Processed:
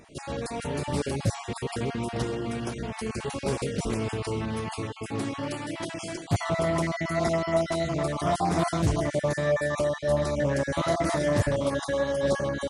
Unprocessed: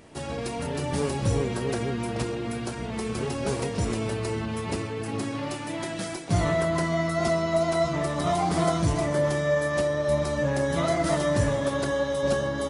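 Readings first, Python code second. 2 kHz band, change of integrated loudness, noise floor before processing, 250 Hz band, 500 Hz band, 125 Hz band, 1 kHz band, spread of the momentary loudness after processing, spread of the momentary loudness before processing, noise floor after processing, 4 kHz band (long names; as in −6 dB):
−1.5 dB, −1.5 dB, −34 dBFS, −1.5 dB, −1.5 dB, −1.5 dB, −1.0 dB, 8 LU, 8 LU, −41 dBFS, −1.5 dB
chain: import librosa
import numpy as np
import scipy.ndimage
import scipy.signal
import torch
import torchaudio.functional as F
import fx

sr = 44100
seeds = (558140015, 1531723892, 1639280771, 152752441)

y = fx.spec_dropout(x, sr, seeds[0], share_pct=24)
y = fx.doppler_dist(y, sr, depth_ms=0.29)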